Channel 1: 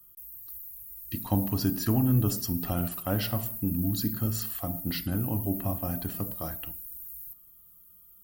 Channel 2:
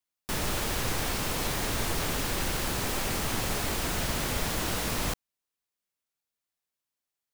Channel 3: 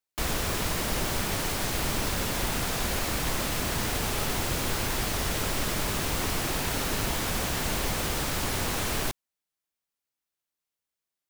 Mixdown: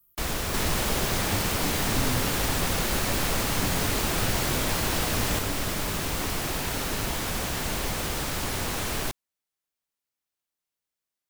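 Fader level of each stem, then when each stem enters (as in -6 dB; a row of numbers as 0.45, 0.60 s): -9.0, +1.0, -0.5 dB; 0.00, 0.25, 0.00 s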